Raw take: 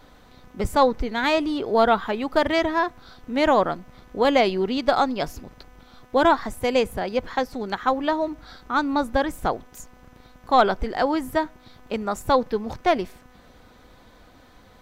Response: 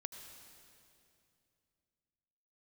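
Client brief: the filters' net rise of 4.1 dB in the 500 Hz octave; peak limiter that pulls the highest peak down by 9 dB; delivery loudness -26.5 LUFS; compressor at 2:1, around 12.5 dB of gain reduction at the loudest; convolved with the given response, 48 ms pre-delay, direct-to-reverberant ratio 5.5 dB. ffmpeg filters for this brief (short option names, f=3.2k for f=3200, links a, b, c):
-filter_complex "[0:a]equalizer=f=500:t=o:g=5,acompressor=threshold=-33dB:ratio=2,alimiter=limit=-21.5dB:level=0:latency=1,asplit=2[a][b];[1:a]atrim=start_sample=2205,adelay=48[c];[b][c]afir=irnorm=-1:irlink=0,volume=-2.5dB[d];[a][d]amix=inputs=2:normalize=0,volume=5.5dB"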